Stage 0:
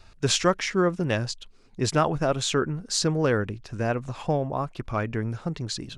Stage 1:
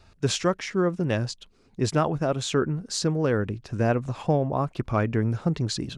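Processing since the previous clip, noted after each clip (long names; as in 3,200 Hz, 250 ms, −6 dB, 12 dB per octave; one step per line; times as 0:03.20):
high-pass filter 63 Hz 6 dB per octave
tilt shelving filter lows +3 dB, about 650 Hz
speech leveller within 4 dB 0.5 s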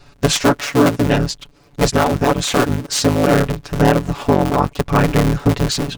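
sub-harmonics by changed cycles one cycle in 3, inverted
comb filter 7 ms, depth 79%
boost into a limiter +9 dB
level −1 dB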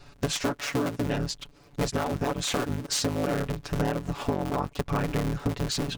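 downward compressor, threshold −20 dBFS, peak gain reduction 12 dB
level −4.5 dB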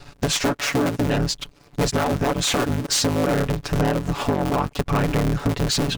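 leveller curve on the samples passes 2
level +1.5 dB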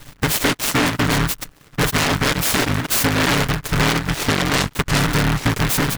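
short delay modulated by noise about 1,300 Hz, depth 0.39 ms
level +3 dB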